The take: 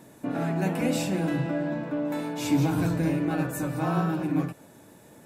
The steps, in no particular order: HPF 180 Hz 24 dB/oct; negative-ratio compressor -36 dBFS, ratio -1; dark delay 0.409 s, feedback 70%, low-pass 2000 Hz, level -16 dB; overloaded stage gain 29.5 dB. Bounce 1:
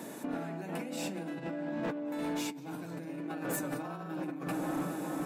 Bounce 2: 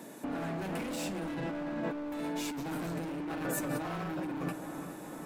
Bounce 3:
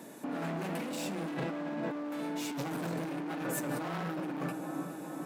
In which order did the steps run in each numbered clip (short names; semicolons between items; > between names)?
dark delay > negative-ratio compressor > HPF > overloaded stage; HPF > overloaded stage > dark delay > negative-ratio compressor; dark delay > overloaded stage > HPF > negative-ratio compressor